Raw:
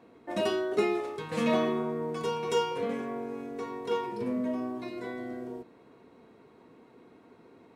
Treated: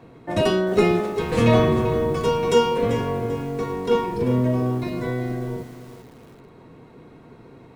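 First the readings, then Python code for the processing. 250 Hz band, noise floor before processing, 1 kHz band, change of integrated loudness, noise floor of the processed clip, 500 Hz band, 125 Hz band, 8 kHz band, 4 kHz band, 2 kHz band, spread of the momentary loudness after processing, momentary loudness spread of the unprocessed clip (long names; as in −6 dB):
+9.5 dB, −57 dBFS, +8.5 dB, +10.0 dB, −47 dBFS, +10.0 dB, +20.5 dB, +8.5 dB, +8.5 dB, +8.5 dB, 10 LU, 10 LU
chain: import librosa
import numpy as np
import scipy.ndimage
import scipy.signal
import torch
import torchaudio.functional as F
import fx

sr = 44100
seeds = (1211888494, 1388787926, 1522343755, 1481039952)

y = fx.octave_divider(x, sr, octaves=1, level_db=1.0)
y = fx.dynamic_eq(y, sr, hz=490.0, q=6.4, threshold_db=-44.0, ratio=4.0, max_db=3)
y = fx.echo_crushed(y, sr, ms=391, feedback_pct=35, bits=8, wet_db=-12)
y = y * librosa.db_to_amplitude(8.0)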